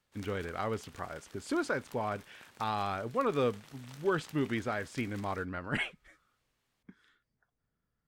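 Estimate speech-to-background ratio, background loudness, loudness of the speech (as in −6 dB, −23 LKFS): 20.0 dB, −55.0 LKFS, −35.0 LKFS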